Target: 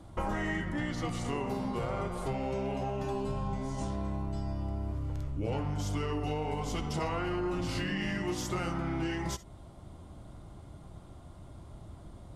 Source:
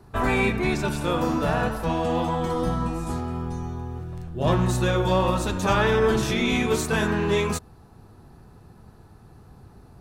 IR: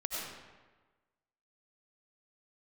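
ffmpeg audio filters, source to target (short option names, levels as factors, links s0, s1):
-filter_complex "[0:a]asetrate=35721,aresample=44100,acompressor=threshold=0.0282:ratio=6[s0];[1:a]atrim=start_sample=2205,atrim=end_sample=3087[s1];[s0][s1]afir=irnorm=-1:irlink=0,volume=1.26"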